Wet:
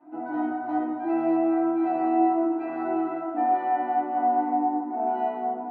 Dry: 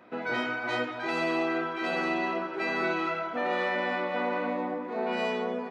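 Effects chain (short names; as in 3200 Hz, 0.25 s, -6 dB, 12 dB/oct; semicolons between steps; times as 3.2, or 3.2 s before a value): double band-pass 480 Hz, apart 1.2 oct; FDN reverb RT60 0.57 s, low-frequency decay 1.3×, high-frequency decay 0.3×, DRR -8 dB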